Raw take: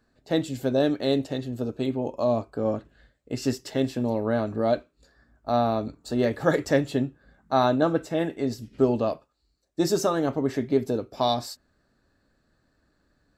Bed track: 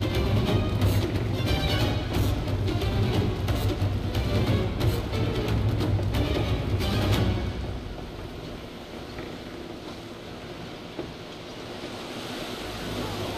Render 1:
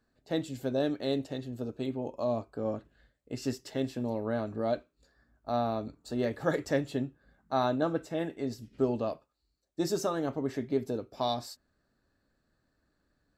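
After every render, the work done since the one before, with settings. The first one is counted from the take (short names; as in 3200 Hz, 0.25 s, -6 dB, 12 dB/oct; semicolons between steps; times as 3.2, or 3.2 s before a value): gain -7 dB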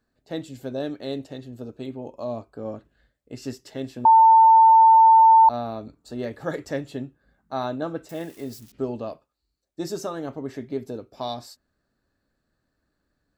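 4.05–5.49 bleep 896 Hz -9.5 dBFS; 8.09–8.72 switching spikes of -38 dBFS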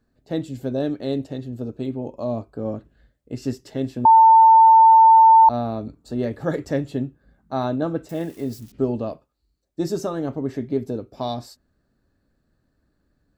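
low shelf 480 Hz +9 dB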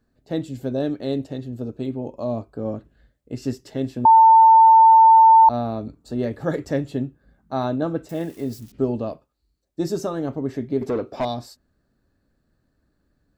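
10.81–11.25 overdrive pedal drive 22 dB, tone 1800 Hz, clips at -14.5 dBFS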